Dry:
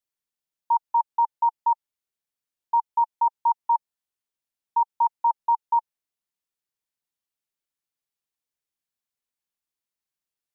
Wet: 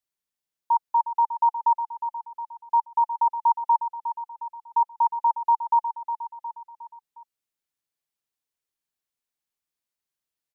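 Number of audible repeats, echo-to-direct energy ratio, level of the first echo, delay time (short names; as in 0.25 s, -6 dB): 4, -9.0 dB, -10.5 dB, 0.36 s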